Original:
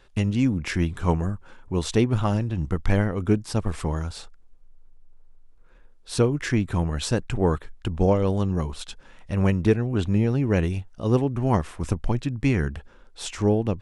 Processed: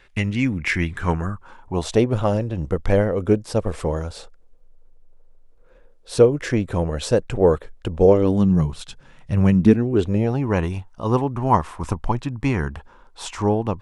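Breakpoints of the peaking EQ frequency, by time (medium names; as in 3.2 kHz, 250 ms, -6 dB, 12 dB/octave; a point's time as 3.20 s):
peaking EQ +12 dB 0.75 oct
0.85 s 2.1 kHz
2.08 s 520 Hz
8.00 s 520 Hz
8.66 s 130 Hz
9.39 s 130 Hz
10.45 s 970 Hz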